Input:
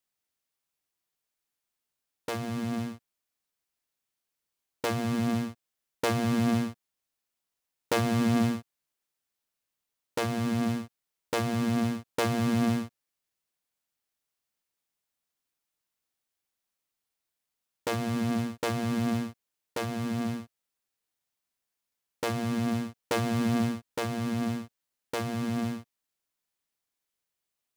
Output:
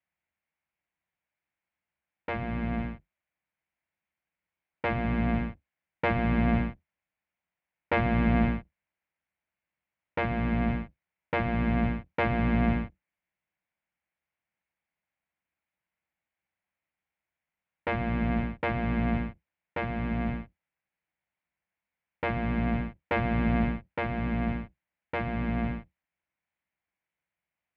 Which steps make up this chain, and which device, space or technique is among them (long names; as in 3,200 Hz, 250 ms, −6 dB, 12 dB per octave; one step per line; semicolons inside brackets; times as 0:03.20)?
sub-octave bass pedal (sub-octave generator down 2 octaves, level −2 dB; loudspeaker in its box 65–2,400 Hz, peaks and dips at 110 Hz −6 dB, 180 Hz +4 dB, 250 Hz −7 dB, 420 Hz −10 dB, 1,200 Hz −5 dB, 2,200 Hz +5 dB)
level +3.5 dB